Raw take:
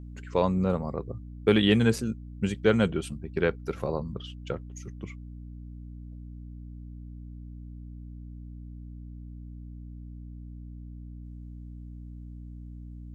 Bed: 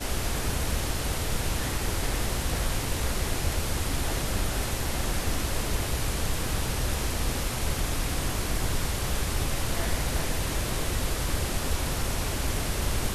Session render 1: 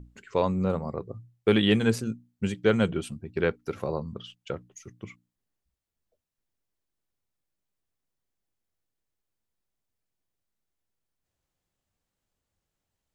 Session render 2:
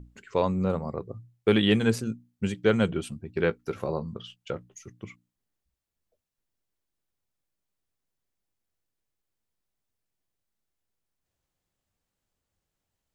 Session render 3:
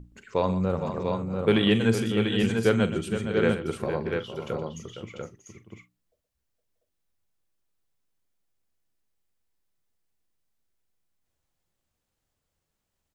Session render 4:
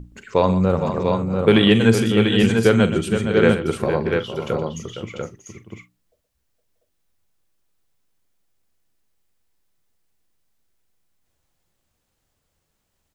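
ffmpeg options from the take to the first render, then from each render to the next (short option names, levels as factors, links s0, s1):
-af "bandreject=f=60:t=h:w=6,bandreject=f=120:t=h:w=6,bandreject=f=180:t=h:w=6,bandreject=f=240:t=h:w=6,bandreject=f=300:t=h:w=6"
-filter_complex "[0:a]asettb=1/sr,asplit=3[s0][s1][s2];[s0]atrim=end=3.374[s3];[s1]atrim=start=3.37:end=4.86,asetpts=PTS-STARTPTS,afade=t=in:d=0.004:c=qsin,afade=t=out:st=1.486:d=0.004:c=qsin,asplit=2[s4][s5];[s5]adelay=18,volume=0.251[s6];[s4][s6]amix=inputs=2:normalize=0,atrim=end_sample=65709[s7];[s2]atrim=start=4.856[s8];[s3][s7]acrossfade=d=0.004:c1=hsin:c2=qsin[s9];[s9][s8]acrossfade=d=0.004:c1=qsin:c2=hsin"
-filter_complex "[0:a]asplit=2[s0][s1];[s1]adelay=44,volume=0.211[s2];[s0][s2]amix=inputs=2:normalize=0,aecho=1:1:120|463|636|693:0.237|0.316|0.188|0.596"
-af "volume=2.51,alimiter=limit=0.708:level=0:latency=1"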